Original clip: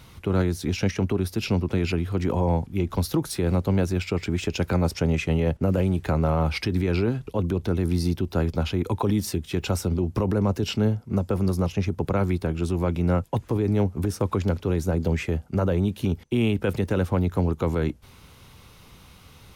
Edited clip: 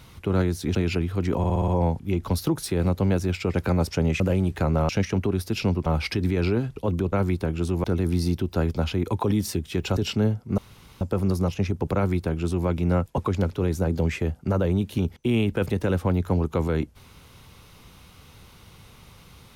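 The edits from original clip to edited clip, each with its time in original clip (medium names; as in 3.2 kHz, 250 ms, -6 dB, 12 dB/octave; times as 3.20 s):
0.75–1.72 s: move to 6.37 s
2.35 s: stutter 0.06 s, 6 plays
4.21–4.58 s: delete
5.24–5.68 s: delete
9.76–10.58 s: delete
11.19 s: insert room tone 0.43 s
12.13–12.85 s: copy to 7.63 s
13.36–14.25 s: delete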